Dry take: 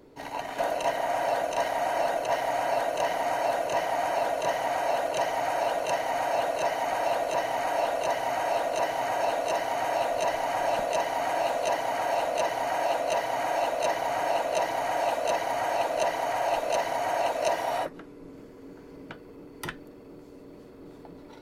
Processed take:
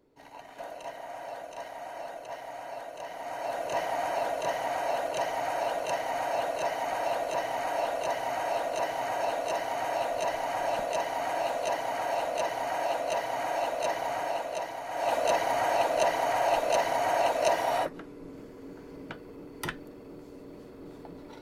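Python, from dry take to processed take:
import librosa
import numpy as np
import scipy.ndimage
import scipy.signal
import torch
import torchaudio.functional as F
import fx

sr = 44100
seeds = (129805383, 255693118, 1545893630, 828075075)

y = fx.gain(x, sr, db=fx.line((3.05, -13.0), (3.75, -3.0), (14.09, -3.0), (14.86, -9.5), (15.14, 1.0)))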